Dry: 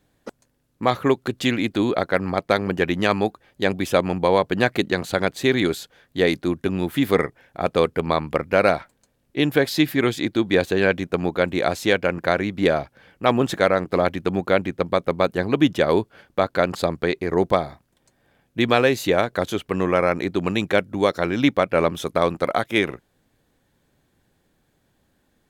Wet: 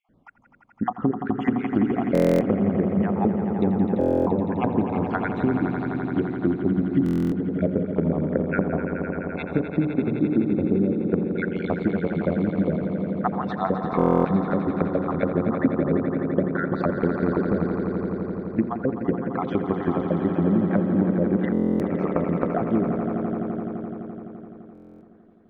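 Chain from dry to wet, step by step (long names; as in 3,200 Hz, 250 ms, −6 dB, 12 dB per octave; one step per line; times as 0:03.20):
time-frequency cells dropped at random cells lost 52%
treble cut that deepens with the level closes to 340 Hz, closed at −18 dBFS
low-pass filter 1,500 Hz 12 dB per octave
parametric band 210 Hz +9.5 dB 1 octave
mains-hum notches 60/120/180/240/300/360/420/480/540 Hz
downward compressor 4 to 1, threshold −23 dBFS, peak gain reduction 11 dB
echo that builds up and dies away 85 ms, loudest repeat 5, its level −10 dB
buffer that repeats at 0:02.13/0:03.99/0:07.04/0:13.97/0:21.52/0:24.73, samples 1,024, times 11
level +3 dB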